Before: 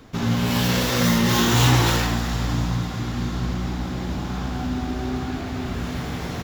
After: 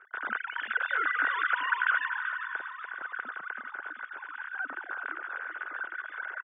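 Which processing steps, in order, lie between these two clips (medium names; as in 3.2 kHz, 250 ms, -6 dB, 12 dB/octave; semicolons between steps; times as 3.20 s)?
formants replaced by sine waves; band-pass filter 1.5 kHz, Q 14; on a send: feedback delay 384 ms, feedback 22%, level -9 dB; on the sum: trim +4 dB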